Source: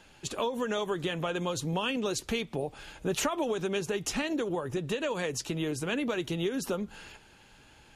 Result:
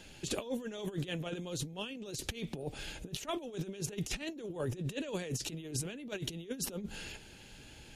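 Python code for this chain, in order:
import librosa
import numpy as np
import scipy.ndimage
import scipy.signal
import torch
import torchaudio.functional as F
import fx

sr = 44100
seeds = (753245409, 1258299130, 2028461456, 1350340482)

y = fx.peak_eq(x, sr, hz=1100.0, db=-11.0, octaves=1.3)
y = fx.over_compress(y, sr, threshold_db=-38.0, ratio=-0.5)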